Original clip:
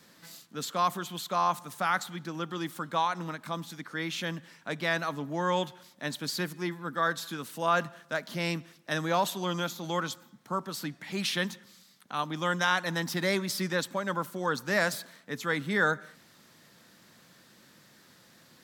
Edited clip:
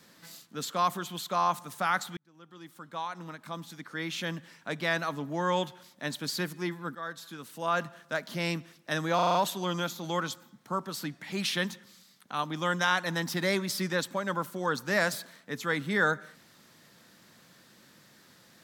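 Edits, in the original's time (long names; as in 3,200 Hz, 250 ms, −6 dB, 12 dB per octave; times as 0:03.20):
0:02.17–0:04.31: fade in
0:06.95–0:08.14: fade in, from −12.5 dB
0:09.15: stutter 0.04 s, 6 plays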